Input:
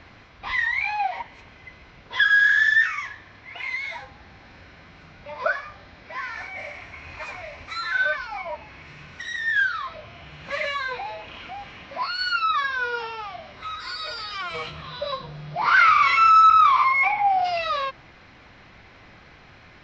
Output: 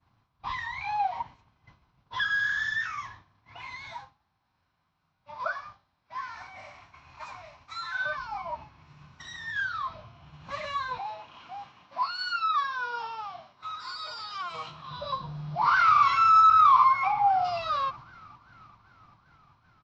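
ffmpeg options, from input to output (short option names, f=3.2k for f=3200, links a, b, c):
-filter_complex "[0:a]asettb=1/sr,asplit=3[a][b][c];[a]atrim=end=3.934[d];[b]atrim=start=3.93:end=8.05,asetpts=PTS-STARTPTS,afade=t=in:d=0.004:c=qsin,afade=t=out:st=4.116:d=0.004:c=qsin,lowshelf=f=470:g=-8.5[e];[c]atrim=start=8.046[f];[d][e]acrossfade=d=0.004:c1=hsin:c2=qsin[g];[g][f]acrossfade=d=0.004:c1=qsin:c2=hsin,asettb=1/sr,asplit=3[h][i][j];[h]atrim=end=10.994[k];[i]atrim=start=10.99:end=14.91,asetpts=PTS-STARTPTS,afade=t=in:d=0.004:c=qsin,afade=t=out:st=3.916:d=0.004:c=qsin,highpass=f=380:p=1[l];[j]atrim=start=14.906[m];[k][l]acrossfade=d=0.004:c1=hsin:c2=qsin[n];[n][m]acrossfade=d=0.004:c1=qsin:c2=hsin,asplit=2[o][p];[p]afade=t=in:st=15.5:d=0.01,afade=t=out:st=16.01:d=0.01,aecho=0:1:390|780|1170|1560|1950|2340|2730|3120|3510|3900|4290|4680:0.141254|0.113003|0.0904024|0.0723219|0.0578575|0.046286|0.0370288|0.0296231|0.0236984|0.0189588|0.015167|0.0121336[q];[o][q]amix=inputs=2:normalize=0,agate=range=-33dB:threshold=-37dB:ratio=3:detection=peak,equalizer=f=125:t=o:w=1:g=8,equalizer=f=500:t=o:w=1:g=-8,equalizer=f=1k:t=o:w=1:g=9,equalizer=f=2k:t=o:w=1:g=-11,volume=-4.5dB"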